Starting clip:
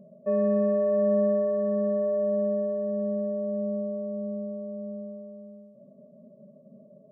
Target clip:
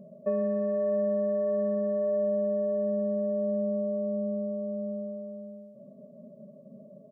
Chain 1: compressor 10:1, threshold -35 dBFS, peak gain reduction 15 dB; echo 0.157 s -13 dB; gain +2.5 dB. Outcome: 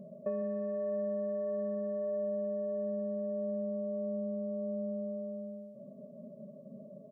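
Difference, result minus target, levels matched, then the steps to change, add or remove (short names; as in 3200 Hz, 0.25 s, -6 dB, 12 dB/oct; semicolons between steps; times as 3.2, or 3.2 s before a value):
compressor: peak gain reduction +7 dB
change: compressor 10:1, threshold -27 dBFS, peak gain reduction 8 dB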